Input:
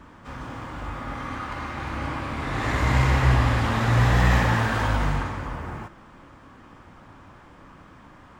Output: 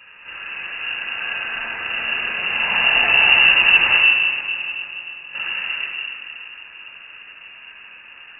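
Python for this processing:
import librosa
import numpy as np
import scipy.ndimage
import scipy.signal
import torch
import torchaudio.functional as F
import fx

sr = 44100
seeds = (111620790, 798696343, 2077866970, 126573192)

p1 = fx.gate_flip(x, sr, shuts_db=-18.0, range_db=-28, at=(3.97, 5.35))
p2 = p1 + fx.echo_heads(p1, sr, ms=144, heads='second and third', feedback_pct=56, wet_db=-16.0, dry=0)
p3 = fx.room_shoebox(p2, sr, seeds[0], volume_m3=2400.0, walls='mixed', distance_m=3.5)
p4 = fx.freq_invert(p3, sr, carrier_hz=2800)
y = p4 * librosa.db_to_amplitude(-2.0)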